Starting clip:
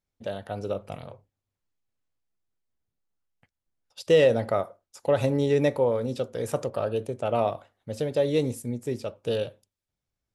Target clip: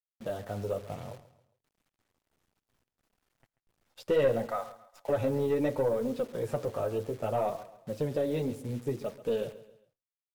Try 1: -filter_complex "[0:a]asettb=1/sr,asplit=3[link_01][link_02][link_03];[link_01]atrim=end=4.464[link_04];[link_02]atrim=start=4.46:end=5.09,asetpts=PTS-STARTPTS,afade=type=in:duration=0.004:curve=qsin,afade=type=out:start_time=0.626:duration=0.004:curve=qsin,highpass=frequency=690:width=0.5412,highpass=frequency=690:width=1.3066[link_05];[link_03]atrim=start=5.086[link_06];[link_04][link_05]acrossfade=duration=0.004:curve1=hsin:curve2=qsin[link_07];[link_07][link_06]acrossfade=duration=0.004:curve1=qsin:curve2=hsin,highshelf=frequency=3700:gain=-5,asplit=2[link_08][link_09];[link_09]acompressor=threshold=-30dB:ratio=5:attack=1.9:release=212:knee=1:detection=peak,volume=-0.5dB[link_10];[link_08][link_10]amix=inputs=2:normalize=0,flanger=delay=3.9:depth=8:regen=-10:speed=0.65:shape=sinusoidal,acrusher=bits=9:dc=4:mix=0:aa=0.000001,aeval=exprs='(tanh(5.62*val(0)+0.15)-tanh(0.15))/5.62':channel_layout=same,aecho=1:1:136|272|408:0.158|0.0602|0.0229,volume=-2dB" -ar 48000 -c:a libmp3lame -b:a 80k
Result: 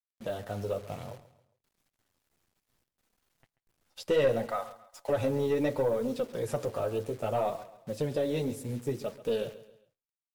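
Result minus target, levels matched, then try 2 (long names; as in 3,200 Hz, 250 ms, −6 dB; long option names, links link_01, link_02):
4,000 Hz band +4.0 dB
-filter_complex "[0:a]asettb=1/sr,asplit=3[link_01][link_02][link_03];[link_01]atrim=end=4.464[link_04];[link_02]atrim=start=4.46:end=5.09,asetpts=PTS-STARTPTS,afade=type=in:duration=0.004:curve=qsin,afade=type=out:start_time=0.626:duration=0.004:curve=qsin,highpass=frequency=690:width=0.5412,highpass=frequency=690:width=1.3066[link_05];[link_03]atrim=start=5.086[link_06];[link_04][link_05]acrossfade=duration=0.004:curve1=hsin:curve2=qsin[link_07];[link_07][link_06]acrossfade=duration=0.004:curve1=qsin:curve2=hsin,highshelf=frequency=3700:gain=-16,asplit=2[link_08][link_09];[link_09]acompressor=threshold=-30dB:ratio=5:attack=1.9:release=212:knee=1:detection=peak,volume=-0.5dB[link_10];[link_08][link_10]amix=inputs=2:normalize=0,flanger=delay=3.9:depth=8:regen=-10:speed=0.65:shape=sinusoidal,acrusher=bits=9:dc=4:mix=0:aa=0.000001,aeval=exprs='(tanh(5.62*val(0)+0.15)-tanh(0.15))/5.62':channel_layout=same,aecho=1:1:136|272|408:0.158|0.0602|0.0229,volume=-2dB" -ar 48000 -c:a libmp3lame -b:a 80k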